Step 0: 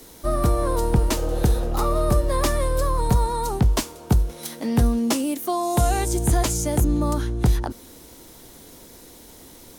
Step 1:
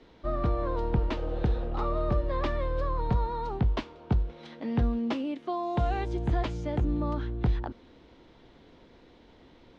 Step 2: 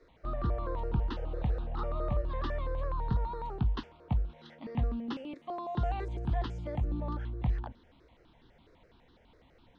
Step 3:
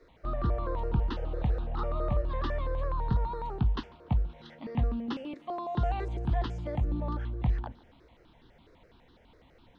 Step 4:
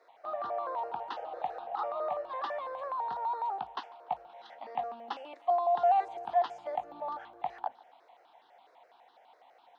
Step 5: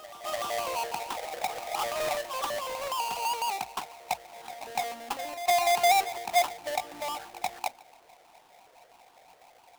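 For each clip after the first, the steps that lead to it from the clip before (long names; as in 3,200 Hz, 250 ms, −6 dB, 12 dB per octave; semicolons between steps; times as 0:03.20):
low-pass filter 3,500 Hz 24 dB per octave; level −7.5 dB
step-sequenced phaser 12 Hz 820–2,300 Hz; level −3 dB
tape delay 144 ms, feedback 53%, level −23 dB, low-pass 4,100 Hz; level +2.5 dB
high-pass with resonance 750 Hz, resonance Q 6; level −3 dB
each half-wave held at its own peak; echo ahead of the sound 294 ms −13.5 dB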